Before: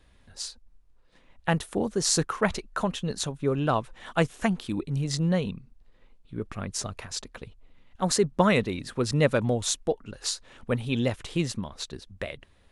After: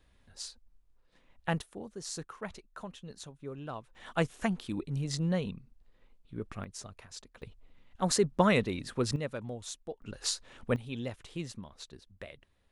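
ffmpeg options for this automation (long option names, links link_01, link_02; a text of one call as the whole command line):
ffmpeg -i in.wav -af "asetnsamples=nb_out_samples=441:pad=0,asendcmd='1.62 volume volume -16dB;3.95 volume volume -5.5dB;6.64 volume volume -12.5dB;7.42 volume volume -3.5dB;9.16 volume volume -14.5dB;10.02 volume volume -2.5dB;10.76 volume volume -11.5dB',volume=-6.5dB" out.wav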